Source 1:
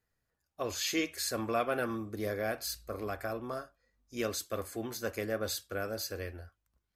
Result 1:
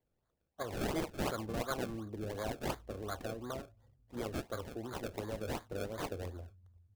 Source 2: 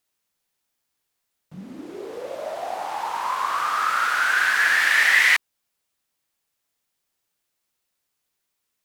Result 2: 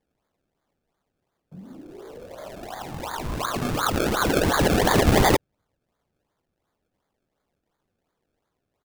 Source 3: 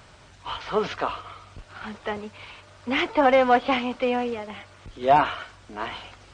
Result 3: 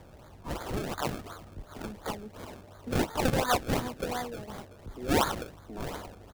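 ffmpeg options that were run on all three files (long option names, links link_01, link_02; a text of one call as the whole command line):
ffmpeg -i in.wav -filter_complex "[0:a]acrossover=split=120|900[link_01][link_02][link_03];[link_01]aecho=1:1:391|782|1173|1564|1955|2346:0.2|0.11|0.0604|0.0332|0.0183|0.01[link_04];[link_02]acompressor=threshold=-40dB:ratio=6[link_05];[link_03]acrusher=samples=31:mix=1:aa=0.000001:lfo=1:lforange=31:lforate=2.8[link_06];[link_04][link_05][link_06]amix=inputs=3:normalize=0" out.wav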